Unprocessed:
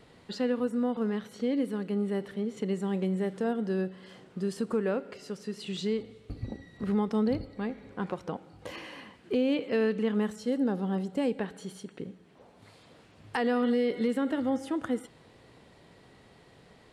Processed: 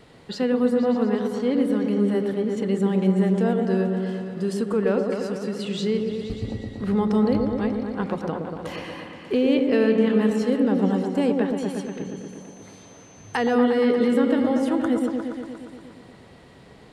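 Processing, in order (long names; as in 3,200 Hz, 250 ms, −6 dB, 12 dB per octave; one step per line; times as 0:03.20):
0:11.84–0:13.53: steady tone 6,200 Hz −57 dBFS
echo whose low-pass opens from repeat to repeat 118 ms, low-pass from 750 Hz, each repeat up 1 octave, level −3 dB
level +5.5 dB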